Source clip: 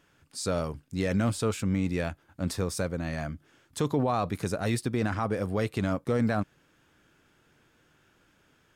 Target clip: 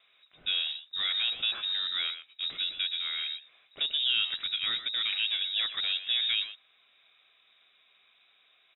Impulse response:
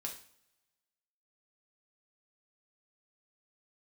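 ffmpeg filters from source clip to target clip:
-filter_complex "[0:a]acrossover=split=470|1900[s0][s1][s2];[s0]asoftclip=type=tanh:threshold=0.0376[s3];[s3][s1][s2]amix=inputs=3:normalize=0,asplit=2[s4][s5];[s5]adelay=120,highpass=300,lowpass=3400,asoftclip=type=hard:threshold=0.0447,volume=0.316[s6];[s4][s6]amix=inputs=2:normalize=0,lowpass=f=3300:t=q:w=0.5098,lowpass=f=3300:t=q:w=0.6013,lowpass=f=3300:t=q:w=0.9,lowpass=f=3300:t=q:w=2.563,afreqshift=-3900,asuperstop=centerf=910:order=4:qfactor=6.9"

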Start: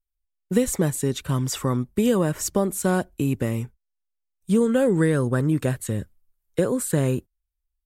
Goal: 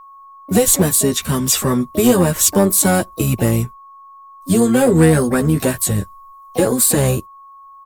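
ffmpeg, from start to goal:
-filter_complex "[0:a]flanger=delay=8.9:depth=3.6:regen=-3:speed=0.3:shape=sinusoidal,crystalizer=i=2:c=0,asplit=3[s0][s1][s2];[s1]asetrate=22050,aresample=44100,atempo=2,volume=0.178[s3];[s2]asetrate=66075,aresample=44100,atempo=0.66742,volume=0.251[s4];[s0][s3][s4]amix=inputs=3:normalize=0,asplit=2[s5][s6];[s6]aeval=exprs='0.141*(abs(mod(val(0)/0.141+3,4)-2)-1)':c=same,volume=0.422[s7];[s5][s7]amix=inputs=2:normalize=0,aeval=exprs='val(0)+0.00562*sin(2*PI*1100*n/s)':c=same,volume=2.11"

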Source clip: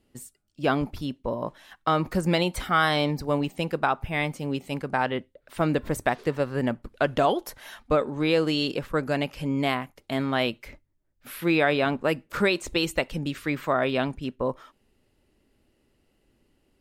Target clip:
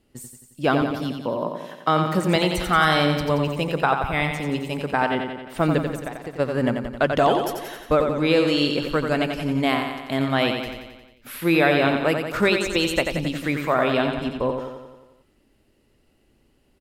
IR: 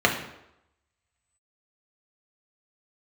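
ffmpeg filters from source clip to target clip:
-filter_complex "[0:a]asettb=1/sr,asplit=3[s0][s1][s2];[s0]atrim=end=0.824[s3];[s1]atrim=start=0.82:end=2.36,asetpts=PTS-STARTPTS,afade=t=in:d=0.004:c=qsin,afade=t=out:st=1.536:d=0.004:c=qsin,highpass=f=120:w=0.5412,highpass=f=120:w=1.3066[s4];[s2]atrim=start=2.356[s5];[s3][s4]acrossfade=d=0.004:c1=hsin:c2=qsin[s6];[s6][s5]acrossfade=d=0.004:c1=qsin:c2=hsin,asplit=3[s7][s8][s9];[s7]afade=t=out:st=5.82:d=0.02[s10];[s8]acompressor=threshold=0.02:ratio=6,afade=t=in:st=5.82:d=0.02,afade=t=out:st=6.38:d=0.02[s11];[s9]afade=t=in:st=6.38:d=0.02[s12];[s10][s11][s12]amix=inputs=3:normalize=0,aecho=1:1:89|178|267|356|445|534|623|712:0.501|0.301|0.18|0.108|0.065|0.039|0.0234|0.014,volume=1.41"

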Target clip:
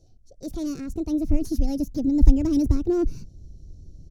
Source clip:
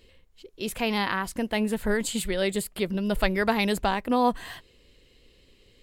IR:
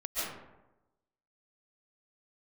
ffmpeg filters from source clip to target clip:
-filter_complex "[0:a]firequalizer=gain_entry='entry(240,0);entry(680,-20);entry(2000,-25);entry(4000,-6);entry(11000,-21)':delay=0.05:min_phase=1,acrossover=split=560[s0][s1];[s1]aeval=exprs='clip(val(0),-1,0.00708)':c=same[s2];[s0][s2]amix=inputs=2:normalize=0,asetrate=62622,aresample=44100,asubboost=boost=8.5:cutoff=230,volume=1.19"

